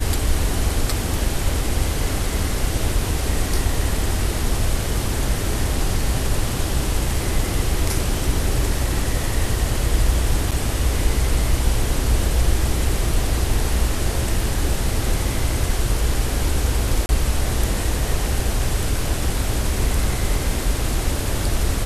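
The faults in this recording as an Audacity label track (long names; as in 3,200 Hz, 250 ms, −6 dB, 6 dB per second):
10.510000	10.520000	drop-out 6.9 ms
17.060000	17.090000	drop-out 31 ms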